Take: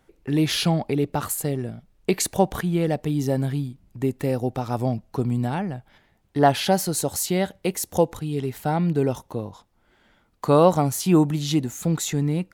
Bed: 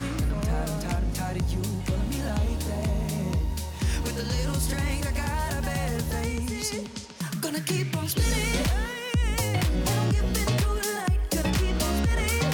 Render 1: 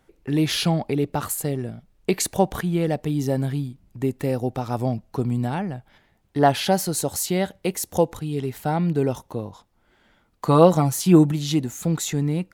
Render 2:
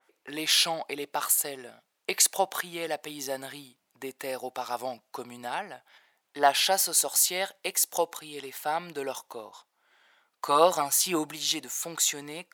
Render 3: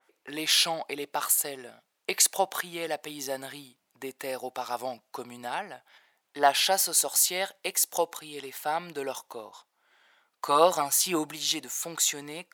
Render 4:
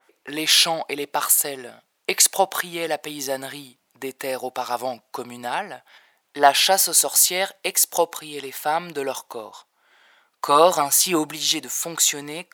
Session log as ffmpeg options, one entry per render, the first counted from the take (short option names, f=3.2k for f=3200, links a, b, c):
-filter_complex "[0:a]asettb=1/sr,asplit=3[a][b][c];[a]atrim=end=10.464[d];[b]atrim=start=10.46:end=11.32,asetpts=PTS-STARTPTS,afade=t=in:d=0.004:c=qsin,afade=t=out:st=0.856:d=0.004:c=qsin,aecho=1:1:6:0.58,atrim=end_sample=37926[e];[c]atrim=start=11.316[f];[d][e]acrossfade=d=0.004:c1=hsin:c2=qsin[g];[g][f]acrossfade=d=0.004:c1=qsin:c2=hsin"
-af "highpass=770,adynamicequalizer=threshold=0.00708:dfrequency=2800:dqfactor=0.7:tfrequency=2800:tqfactor=0.7:attack=5:release=100:ratio=0.375:range=2:mode=boostabove:tftype=highshelf"
-af anull
-af "volume=7dB,alimiter=limit=-2dB:level=0:latency=1"